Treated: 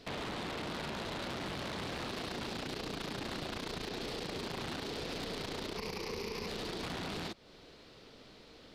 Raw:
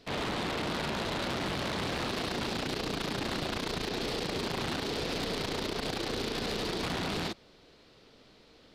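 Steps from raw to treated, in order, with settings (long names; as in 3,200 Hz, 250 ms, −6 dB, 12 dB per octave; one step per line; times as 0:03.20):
0:05.77–0:06.48: EQ curve with evenly spaced ripples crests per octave 0.83, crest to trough 11 dB
downward compressor 2.5 to 1, threshold −45 dBFS, peak gain reduction 11 dB
level +2.5 dB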